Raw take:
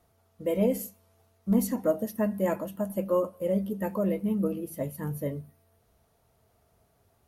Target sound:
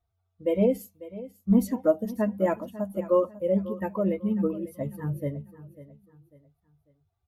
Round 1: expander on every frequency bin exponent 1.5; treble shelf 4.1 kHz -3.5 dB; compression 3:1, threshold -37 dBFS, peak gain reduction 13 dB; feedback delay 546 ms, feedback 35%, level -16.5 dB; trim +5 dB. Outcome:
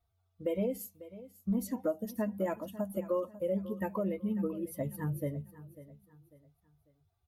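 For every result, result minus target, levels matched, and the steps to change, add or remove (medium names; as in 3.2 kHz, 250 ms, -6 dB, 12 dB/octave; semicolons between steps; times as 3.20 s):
compression: peak gain reduction +13 dB; 8 kHz band +8.0 dB
remove: compression 3:1, threshold -37 dBFS, peak gain reduction 13 dB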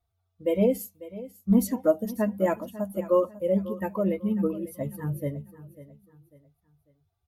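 8 kHz band +6.5 dB
change: treble shelf 4.1 kHz -11.5 dB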